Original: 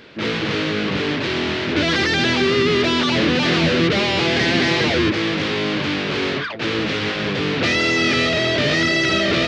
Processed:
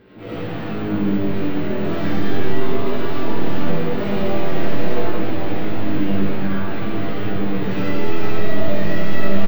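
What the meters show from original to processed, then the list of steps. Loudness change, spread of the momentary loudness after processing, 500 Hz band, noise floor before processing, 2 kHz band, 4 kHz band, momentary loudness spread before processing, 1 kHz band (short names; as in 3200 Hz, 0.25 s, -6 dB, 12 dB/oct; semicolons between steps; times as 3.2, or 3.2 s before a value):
-5.5 dB, 4 LU, -3.5 dB, -24 dBFS, -12.0 dB, -16.5 dB, 5 LU, -3.5 dB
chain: tracing distortion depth 0.022 ms; LPF 1100 Hz 6 dB/oct; low shelf 380 Hz +8 dB; reverse; upward compressor, threshold -20 dBFS; reverse; soft clip -19 dBFS, distortion -8 dB; resonator 97 Hz, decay 0.28 s, harmonics all, mix 80%; chorus 0.4 Hz, delay 16 ms, depth 4.2 ms; on a send: echo 1.115 s -9 dB; on the sum: digital reverb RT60 1.8 s, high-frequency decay 0.5×, pre-delay 30 ms, DRR -8.5 dB; careless resampling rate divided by 2×, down filtered, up hold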